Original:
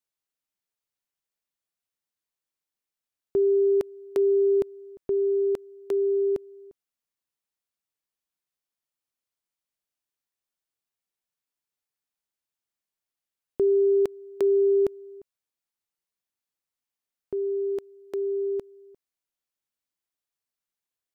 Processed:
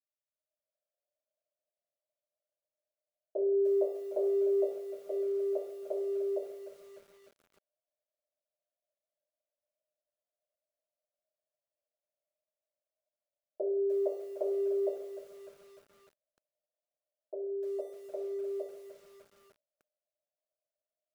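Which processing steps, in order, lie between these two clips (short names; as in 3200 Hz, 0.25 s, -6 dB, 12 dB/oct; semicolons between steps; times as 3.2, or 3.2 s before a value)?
AGC gain up to 15 dB; Butterworth band-pass 610 Hz, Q 5.9; 3.36–4.96 doubler 18 ms -6 dB; reverb RT60 0.65 s, pre-delay 3 ms, DRR -8.5 dB; lo-fi delay 0.3 s, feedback 55%, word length 8-bit, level -13 dB; gain -3.5 dB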